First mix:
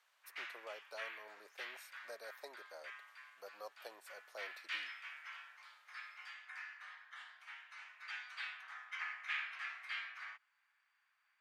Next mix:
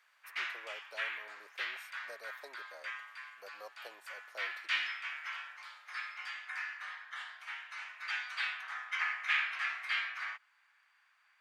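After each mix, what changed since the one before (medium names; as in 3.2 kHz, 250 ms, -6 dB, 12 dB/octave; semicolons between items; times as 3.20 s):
background +9.0 dB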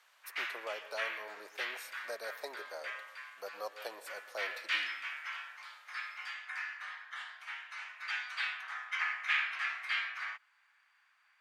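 speech +7.0 dB; reverb: on, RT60 0.80 s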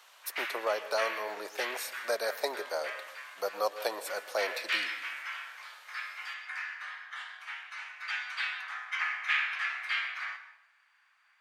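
speech +11.0 dB; background: send on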